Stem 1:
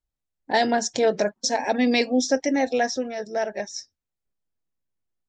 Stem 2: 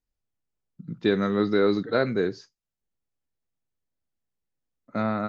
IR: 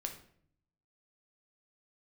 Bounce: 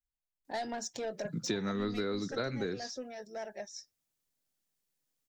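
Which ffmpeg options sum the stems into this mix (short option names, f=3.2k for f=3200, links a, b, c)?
-filter_complex "[0:a]highshelf=f=5.6k:g=3.5,asoftclip=type=tanh:threshold=-15.5dB,flanger=delay=0.7:depth=1.2:regen=67:speed=1.2:shape=triangular,volume=-8.5dB[a];[1:a]highpass=130,highshelf=f=2.9k:g=11.5,adelay=450,volume=0dB[b];[a][b]amix=inputs=2:normalize=0,acrossover=split=130[c][d];[d]acompressor=threshold=-32dB:ratio=10[e];[c][e]amix=inputs=2:normalize=0"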